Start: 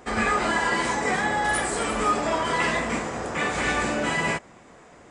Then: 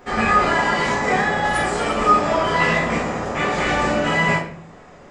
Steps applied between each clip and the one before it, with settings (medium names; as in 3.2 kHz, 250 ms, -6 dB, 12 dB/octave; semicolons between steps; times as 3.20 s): peaking EQ 9.1 kHz -12 dB 0.51 oct; simulated room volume 60 m³, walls mixed, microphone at 0.97 m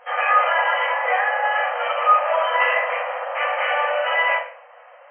FFT band-pass 480–3200 Hz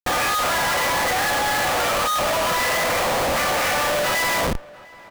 Schmitt trigger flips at -34.5 dBFS; echo from a far wall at 120 m, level -20 dB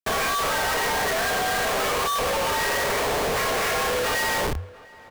frequency shift -94 Hz; trim -3 dB